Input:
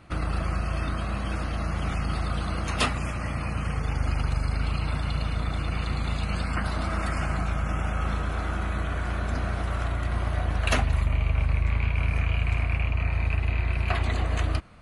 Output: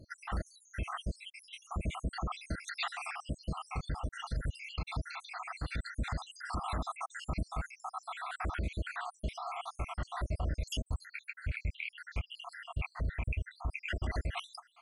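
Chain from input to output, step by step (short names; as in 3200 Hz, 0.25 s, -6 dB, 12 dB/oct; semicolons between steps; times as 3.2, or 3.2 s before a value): random spectral dropouts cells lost 76%; 1.26–1.71 elliptic high-pass 1800 Hz, stop band 70 dB; limiter -26 dBFS, peak gain reduction 11 dB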